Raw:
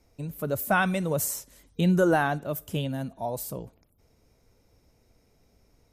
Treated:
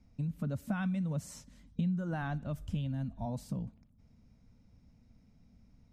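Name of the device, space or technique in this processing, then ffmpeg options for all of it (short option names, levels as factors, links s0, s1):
jukebox: -filter_complex "[0:a]asplit=3[s0][s1][s2];[s0]afade=t=out:st=2.21:d=0.02[s3];[s1]asubboost=boost=9.5:cutoff=66,afade=t=in:st=2.21:d=0.02,afade=t=out:st=3.25:d=0.02[s4];[s2]afade=t=in:st=3.25:d=0.02[s5];[s3][s4][s5]amix=inputs=3:normalize=0,lowpass=5600,lowshelf=f=290:t=q:w=3:g=8.5,acompressor=threshold=0.0562:ratio=5,volume=0.447"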